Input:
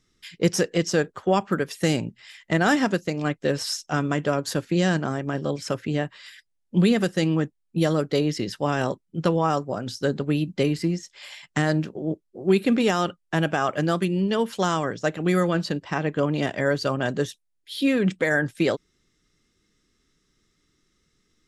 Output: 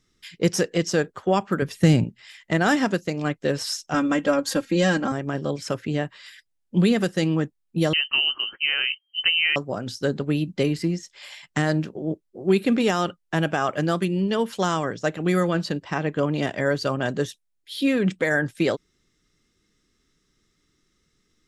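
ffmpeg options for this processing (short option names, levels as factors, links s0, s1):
-filter_complex "[0:a]asettb=1/sr,asplit=3[s0][s1][s2];[s0]atrim=end=1.624[s3];[s1]atrim=start=1.62:end=2.04,asetpts=PTS-STARTPTS,afade=t=in:d=0.004:c=qsin,afade=t=out:st=0.416:d=0.004:c=qsin,bass=f=250:g=11,treble=f=4000:g=-3[s4];[s2]atrim=start=2.036[s5];[s3][s4]acrossfade=d=0.004:c1=hsin:c2=qsin[s6];[s6][s5]acrossfade=d=0.004:c1=qsin:c2=hsin,asettb=1/sr,asplit=3[s7][s8][s9];[s7]atrim=end=3.944[s10];[s8]atrim=start=3.94:end=5.12,asetpts=PTS-STARTPTS,afade=t=in:d=0.004:c=qsin,afade=t=out:st=1.176:d=0.004:c=qsin,aecho=1:1:3.7:0.86,atrim=end_sample=52038[s11];[s9]atrim=start=5.116[s12];[s10][s11]acrossfade=d=0.004:c1=hsin:c2=qsin[s13];[s13][s12]acrossfade=d=0.004:c1=qsin:c2=hsin,asettb=1/sr,asplit=3[s14][s15][s16];[s14]atrim=end=7.934[s17];[s15]atrim=start=7.93:end=9.56,asetpts=PTS-STARTPTS,afade=t=in:d=0.004:c=qsin,afade=t=out:st=1.626:d=0.004:c=qsin,lowpass=f=2700:t=q:w=0.5098,lowpass=f=2700:t=q:w=0.6013,lowpass=f=2700:t=q:w=0.9,lowpass=f=2700:t=q:w=2.563,afreqshift=-3200[s18];[s16]atrim=start=9.556[s19];[s17][s18]acrossfade=d=0.004:c1=hsin:c2=qsin[s20];[s20][s19]acrossfade=d=0.004:c1=qsin:c2=hsin"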